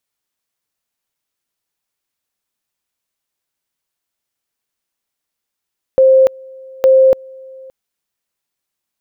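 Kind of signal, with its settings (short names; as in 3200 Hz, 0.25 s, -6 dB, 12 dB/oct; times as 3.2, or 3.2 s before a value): two-level tone 527 Hz -5 dBFS, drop 27 dB, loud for 0.29 s, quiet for 0.57 s, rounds 2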